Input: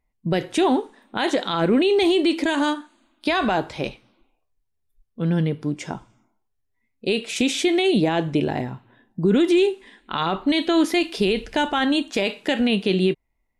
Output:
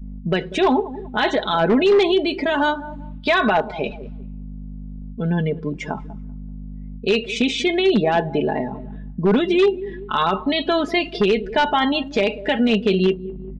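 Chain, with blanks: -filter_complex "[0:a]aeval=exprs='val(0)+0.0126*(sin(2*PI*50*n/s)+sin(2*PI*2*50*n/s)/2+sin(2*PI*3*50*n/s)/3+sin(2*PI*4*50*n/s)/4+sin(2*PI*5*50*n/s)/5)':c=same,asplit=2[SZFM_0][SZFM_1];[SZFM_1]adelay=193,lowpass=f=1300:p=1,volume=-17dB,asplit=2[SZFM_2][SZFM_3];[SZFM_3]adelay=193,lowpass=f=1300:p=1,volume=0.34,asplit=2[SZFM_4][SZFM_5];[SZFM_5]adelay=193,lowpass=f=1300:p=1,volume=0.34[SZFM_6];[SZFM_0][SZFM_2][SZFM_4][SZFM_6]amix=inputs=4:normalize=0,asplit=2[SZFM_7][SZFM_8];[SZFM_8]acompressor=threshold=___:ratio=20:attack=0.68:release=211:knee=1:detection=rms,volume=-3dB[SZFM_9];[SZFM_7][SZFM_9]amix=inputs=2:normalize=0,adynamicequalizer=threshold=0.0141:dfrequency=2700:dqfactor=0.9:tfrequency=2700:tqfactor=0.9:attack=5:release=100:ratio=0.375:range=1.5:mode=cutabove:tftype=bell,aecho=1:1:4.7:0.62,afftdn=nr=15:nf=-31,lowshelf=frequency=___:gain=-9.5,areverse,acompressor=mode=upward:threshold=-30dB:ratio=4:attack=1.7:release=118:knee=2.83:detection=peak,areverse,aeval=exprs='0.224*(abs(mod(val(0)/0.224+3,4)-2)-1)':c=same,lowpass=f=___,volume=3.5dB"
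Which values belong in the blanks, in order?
-28dB, 270, 4000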